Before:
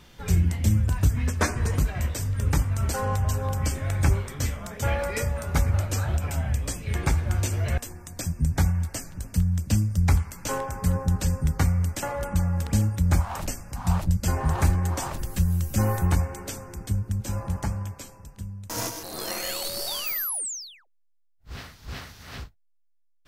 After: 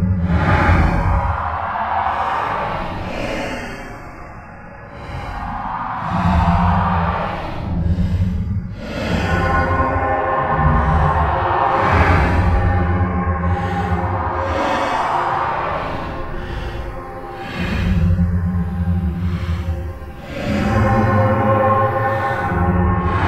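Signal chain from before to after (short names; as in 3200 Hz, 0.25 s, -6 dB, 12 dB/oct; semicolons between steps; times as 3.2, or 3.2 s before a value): air absorption 400 m; overdrive pedal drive 17 dB, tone 6800 Hz, clips at -8.5 dBFS; Paulstretch 7.6×, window 0.10 s, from 13.05; gain +7 dB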